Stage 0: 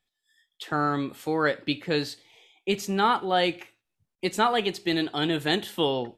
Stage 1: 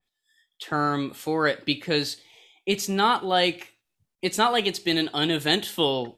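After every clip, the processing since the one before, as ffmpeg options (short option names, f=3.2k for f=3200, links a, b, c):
-af "adynamicequalizer=threshold=0.0126:dfrequency=2800:dqfactor=0.7:tfrequency=2800:tqfactor=0.7:attack=5:release=100:ratio=0.375:range=3:mode=boostabove:tftype=highshelf,volume=1dB"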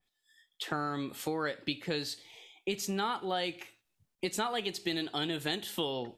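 -af "acompressor=threshold=-32dB:ratio=4"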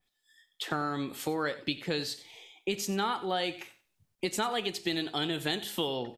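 -af "aecho=1:1:92|184:0.15|0.0314,volume=2dB"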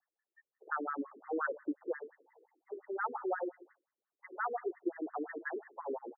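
-af "afftfilt=real='re*between(b*sr/1024,340*pow(1500/340,0.5+0.5*sin(2*PI*5.7*pts/sr))/1.41,340*pow(1500/340,0.5+0.5*sin(2*PI*5.7*pts/sr))*1.41)':imag='im*between(b*sr/1024,340*pow(1500/340,0.5+0.5*sin(2*PI*5.7*pts/sr))/1.41,340*pow(1500/340,0.5+0.5*sin(2*PI*5.7*pts/sr))*1.41)':win_size=1024:overlap=0.75"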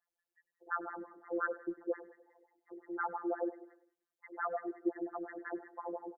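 -af "afftfilt=real='hypot(re,im)*cos(PI*b)':imag='0':win_size=1024:overlap=0.75,aecho=1:1:100|200|300|400:0.106|0.0519|0.0254|0.0125,volume=2.5dB"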